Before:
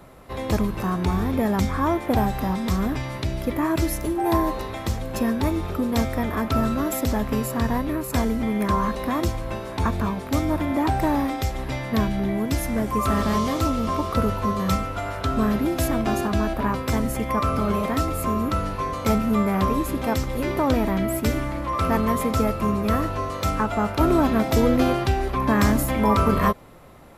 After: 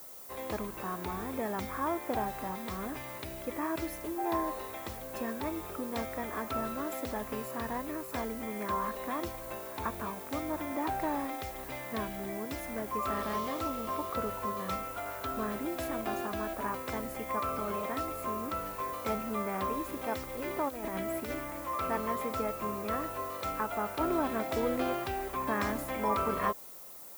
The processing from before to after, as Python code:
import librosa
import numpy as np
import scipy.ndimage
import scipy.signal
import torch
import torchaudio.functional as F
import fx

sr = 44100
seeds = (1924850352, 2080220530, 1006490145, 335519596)

y = fx.bass_treble(x, sr, bass_db=-13, treble_db=-8)
y = fx.over_compress(y, sr, threshold_db=-28.0, ratio=-0.5, at=(20.68, 21.34), fade=0.02)
y = fx.dmg_noise_colour(y, sr, seeds[0], colour='violet', level_db=-40.0)
y = y * librosa.db_to_amplitude(-8.5)